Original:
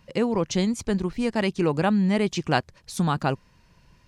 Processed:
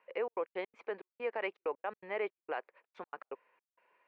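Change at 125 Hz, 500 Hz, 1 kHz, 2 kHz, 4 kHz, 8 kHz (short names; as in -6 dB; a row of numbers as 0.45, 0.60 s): under -40 dB, -10.5 dB, -13.5 dB, -11.0 dB, -21.5 dB, under -40 dB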